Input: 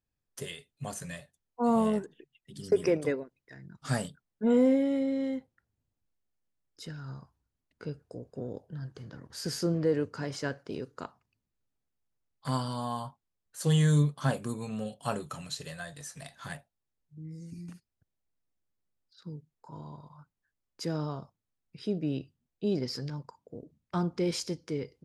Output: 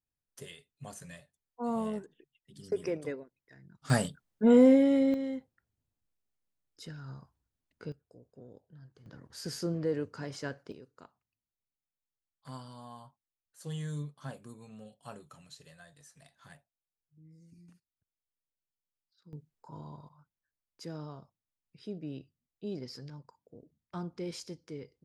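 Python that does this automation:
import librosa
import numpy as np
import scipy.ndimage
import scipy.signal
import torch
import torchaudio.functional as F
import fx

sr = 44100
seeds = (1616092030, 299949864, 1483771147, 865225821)

y = fx.gain(x, sr, db=fx.steps((0.0, -7.5), (3.9, 3.5), (5.14, -3.0), (7.92, -14.0), (9.06, -4.5), (10.72, -14.0), (19.33, -1.5), (20.09, -9.0)))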